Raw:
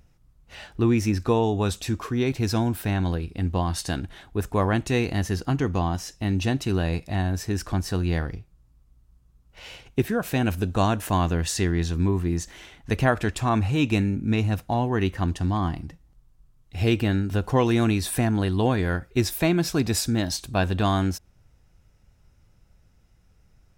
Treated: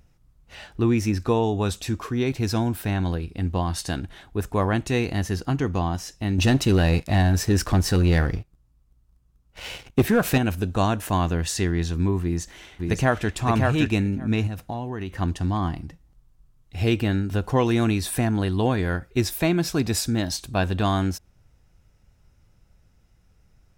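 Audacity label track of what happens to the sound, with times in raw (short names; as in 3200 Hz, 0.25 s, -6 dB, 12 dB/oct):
6.380000	10.380000	sample leveller passes 2
12.220000	13.350000	echo throw 0.57 s, feedback 10%, level -3 dB
14.470000	15.180000	compressor, threshold -26 dBFS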